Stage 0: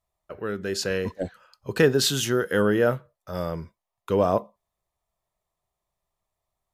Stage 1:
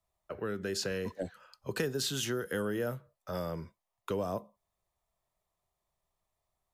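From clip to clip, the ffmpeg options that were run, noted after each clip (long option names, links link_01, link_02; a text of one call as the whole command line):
ffmpeg -i in.wav -filter_complex "[0:a]acrossover=split=110|240|5600[link_01][link_02][link_03][link_04];[link_01]acompressor=threshold=-50dB:ratio=4[link_05];[link_02]acompressor=threshold=-41dB:ratio=4[link_06];[link_03]acompressor=threshold=-33dB:ratio=4[link_07];[link_04]acompressor=threshold=-38dB:ratio=4[link_08];[link_05][link_06][link_07][link_08]amix=inputs=4:normalize=0,volume=-1.5dB" out.wav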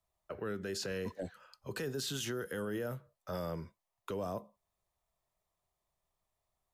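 ffmpeg -i in.wav -af "alimiter=level_in=4dB:limit=-24dB:level=0:latency=1:release=16,volume=-4dB,volume=-1.5dB" out.wav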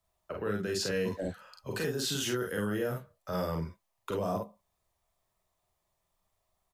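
ffmpeg -i in.wav -af "aecho=1:1:38|49:0.531|0.668,volume=3.5dB" out.wav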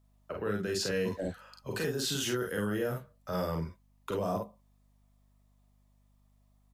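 ffmpeg -i in.wav -af "aeval=exprs='val(0)+0.000562*(sin(2*PI*50*n/s)+sin(2*PI*2*50*n/s)/2+sin(2*PI*3*50*n/s)/3+sin(2*PI*4*50*n/s)/4+sin(2*PI*5*50*n/s)/5)':channel_layout=same" out.wav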